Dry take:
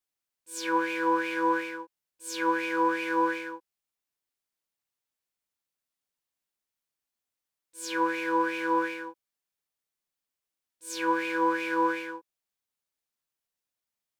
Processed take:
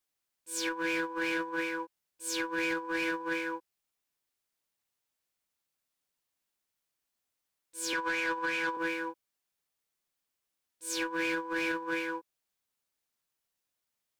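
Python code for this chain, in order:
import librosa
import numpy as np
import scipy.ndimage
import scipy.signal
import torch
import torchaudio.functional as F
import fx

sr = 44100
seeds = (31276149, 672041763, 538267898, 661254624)

y = fx.weighting(x, sr, curve='A', at=(7.93, 8.77))
y = fx.over_compress(y, sr, threshold_db=-30.0, ratio=-0.5)
y = 10.0 ** (-25.0 / 20.0) * np.tanh(y / 10.0 ** (-25.0 / 20.0))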